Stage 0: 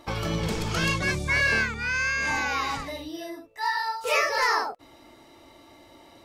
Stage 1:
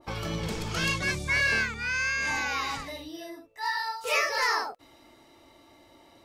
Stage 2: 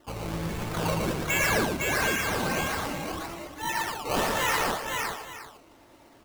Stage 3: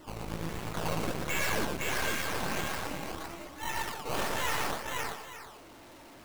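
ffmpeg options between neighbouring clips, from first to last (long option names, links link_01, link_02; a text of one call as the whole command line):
ffmpeg -i in.wav -af "adynamicequalizer=threshold=0.0224:dfrequency=1600:dqfactor=0.7:tfrequency=1600:tqfactor=0.7:attack=5:release=100:ratio=0.375:range=2:mode=boostabove:tftype=highshelf,volume=-4.5dB" out.wav
ffmpeg -i in.wav -filter_complex "[0:a]acrusher=samples=18:mix=1:aa=0.000001:lfo=1:lforange=18:lforate=1.3,asplit=2[link_01][link_02];[link_02]aecho=0:1:115|510|665|866:0.668|0.668|0.126|0.178[link_03];[link_01][link_03]amix=inputs=2:normalize=0,volume=-1.5dB" out.wav
ffmpeg -i in.wav -af "aeval=exprs='val(0)+0.5*0.0106*sgn(val(0))':channel_layout=same,aeval=exprs='0.2*(cos(1*acos(clip(val(0)/0.2,-1,1)))-cos(1*PI/2))+0.0562*(cos(6*acos(clip(val(0)/0.2,-1,1)))-cos(6*PI/2))':channel_layout=same,volume=-8.5dB" out.wav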